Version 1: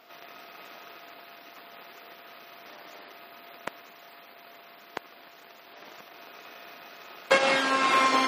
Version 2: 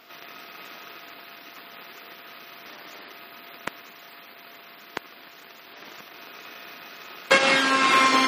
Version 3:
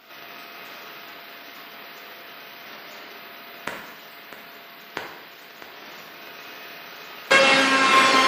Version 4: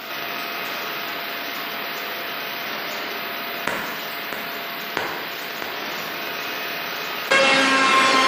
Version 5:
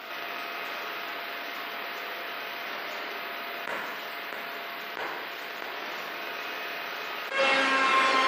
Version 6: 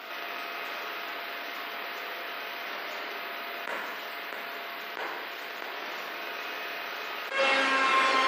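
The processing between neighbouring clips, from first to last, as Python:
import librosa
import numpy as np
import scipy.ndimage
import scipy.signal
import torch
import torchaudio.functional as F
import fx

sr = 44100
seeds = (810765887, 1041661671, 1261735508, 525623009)

y1 = fx.peak_eq(x, sr, hz=670.0, db=-6.5, octaves=1.2)
y1 = y1 * 10.0 ** (6.0 / 20.0)
y2 = fx.echo_feedback(y1, sr, ms=651, feedback_pct=46, wet_db=-12.0)
y2 = fx.rev_plate(y2, sr, seeds[0], rt60_s=0.9, hf_ratio=0.8, predelay_ms=0, drr_db=0.0)
y3 = fx.env_flatten(y2, sr, amount_pct=50)
y3 = y3 * 10.0 ** (-1.5 / 20.0)
y4 = fx.bass_treble(y3, sr, bass_db=-11, treble_db=-8)
y4 = fx.attack_slew(y4, sr, db_per_s=130.0)
y4 = y4 * 10.0 ** (-6.0 / 20.0)
y5 = scipy.signal.sosfilt(scipy.signal.butter(2, 200.0, 'highpass', fs=sr, output='sos'), y4)
y5 = y5 * 10.0 ** (-1.0 / 20.0)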